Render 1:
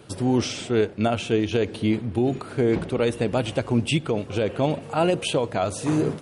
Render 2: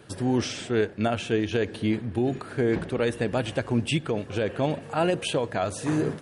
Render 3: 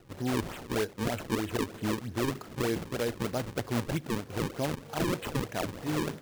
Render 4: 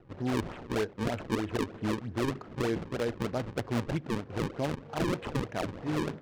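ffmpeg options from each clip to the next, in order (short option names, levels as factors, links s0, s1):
-af "equalizer=f=1700:t=o:w=0.26:g=9,volume=0.708"
-af "acrusher=samples=37:mix=1:aa=0.000001:lfo=1:lforange=59.2:lforate=3.2,volume=0.501"
-af "adynamicsmooth=sensitivity=4:basefreq=2000"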